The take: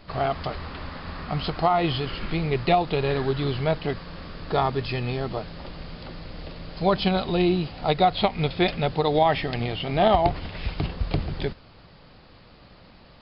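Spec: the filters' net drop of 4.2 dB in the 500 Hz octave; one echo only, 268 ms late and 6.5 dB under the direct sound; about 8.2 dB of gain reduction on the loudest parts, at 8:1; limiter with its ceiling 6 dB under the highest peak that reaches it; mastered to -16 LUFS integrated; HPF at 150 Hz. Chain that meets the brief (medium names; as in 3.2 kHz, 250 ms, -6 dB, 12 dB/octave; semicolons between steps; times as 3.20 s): high-pass 150 Hz; peaking EQ 500 Hz -6 dB; compression 8:1, threshold -26 dBFS; peak limiter -21 dBFS; delay 268 ms -6.5 dB; trim +17 dB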